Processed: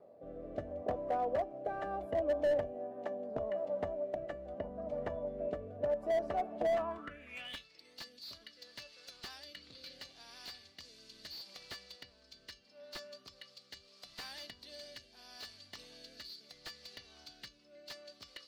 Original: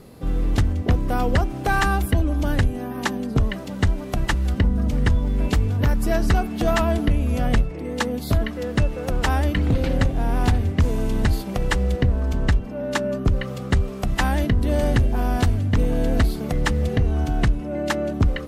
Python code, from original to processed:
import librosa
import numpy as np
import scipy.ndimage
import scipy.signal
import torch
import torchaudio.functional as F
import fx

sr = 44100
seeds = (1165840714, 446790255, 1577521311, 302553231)

y = fx.comb_fb(x, sr, f0_hz=580.0, decay_s=0.22, harmonics='all', damping=0.0, mix_pct=70)
y = fx.rotary(y, sr, hz=0.75)
y = fx.filter_sweep_bandpass(y, sr, from_hz=630.0, to_hz=4500.0, start_s=6.69, end_s=7.68, q=6.7)
y = fx.slew_limit(y, sr, full_power_hz=5.6)
y = F.gain(torch.from_numpy(y), 13.0).numpy()